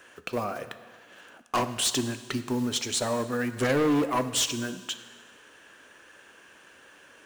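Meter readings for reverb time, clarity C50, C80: 1.6 s, 12.0 dB, 13.5 dB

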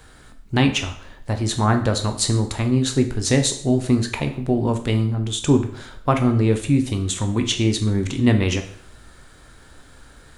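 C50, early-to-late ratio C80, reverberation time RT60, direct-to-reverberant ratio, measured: 10.5 dB, 13.5 dB, 0.60 s, 5.5 dB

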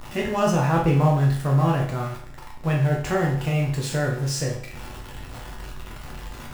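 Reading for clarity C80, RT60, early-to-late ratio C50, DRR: 9.5 dB, 0.55 s, 5.5 dB, -2.5 dB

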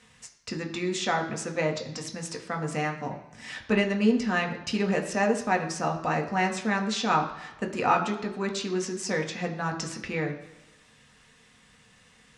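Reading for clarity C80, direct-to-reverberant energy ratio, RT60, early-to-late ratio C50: 12.0 dB, 2.0 dB, 1.0 s, 10.0 dB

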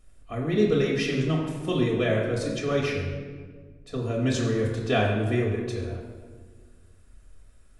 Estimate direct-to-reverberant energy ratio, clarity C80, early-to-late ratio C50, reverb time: -3.0 dB, 4.5 dB, 3.0 dB, 1.6 s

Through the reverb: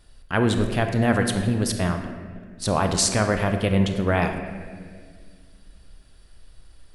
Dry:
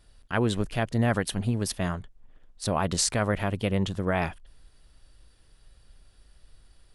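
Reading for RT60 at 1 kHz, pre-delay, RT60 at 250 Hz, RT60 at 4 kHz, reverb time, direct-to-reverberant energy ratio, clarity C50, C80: 1.6 s, 28 ms, 2.8 s, 1.2 s, 1.9 s, 5.5 dB, 6.5 dB, 8.0 dB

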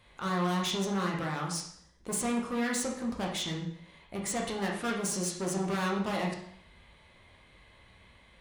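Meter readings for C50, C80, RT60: 4.0 dB, 8.0 dB, 0.65 s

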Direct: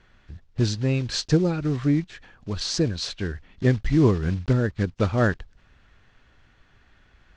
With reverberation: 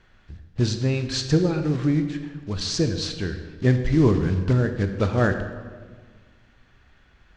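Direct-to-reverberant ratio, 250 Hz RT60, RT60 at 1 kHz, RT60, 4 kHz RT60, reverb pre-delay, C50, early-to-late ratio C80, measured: 7.0 dB, 1.9 s, 1.5 s, 1.6 s, 1.1 s, 23 ms, 8.5 dB, 9.5 dB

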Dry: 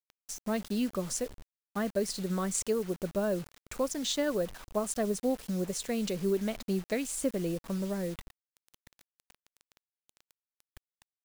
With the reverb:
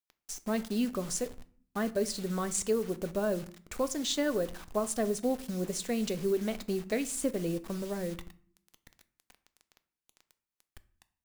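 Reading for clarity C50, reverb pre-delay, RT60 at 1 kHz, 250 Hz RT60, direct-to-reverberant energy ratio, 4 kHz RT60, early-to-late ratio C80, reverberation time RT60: 18.5 dB, 3 ms, 0.50 s, 0.80 s, 11.5 dB, 0.35 s, 22.5 dB, 0.50 s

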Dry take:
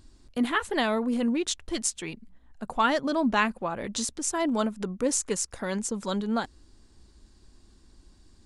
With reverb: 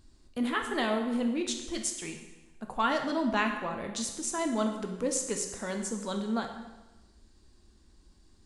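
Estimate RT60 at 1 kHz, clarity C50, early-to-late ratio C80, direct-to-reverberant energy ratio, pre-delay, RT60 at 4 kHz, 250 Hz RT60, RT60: 1.1 s, 6.5 dB, 8.0 dB, 3.5 dB, 6 ms, 1.0 s, 1.2 s, 1.1 s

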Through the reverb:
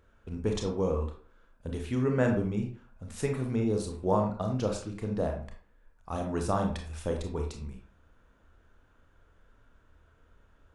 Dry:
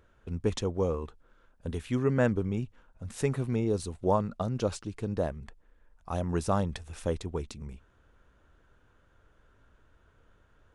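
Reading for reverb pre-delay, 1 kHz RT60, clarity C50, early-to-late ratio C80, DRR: 26 ms, 0.45 s, 7.0 dB, 11.0 dB, 2.5 dB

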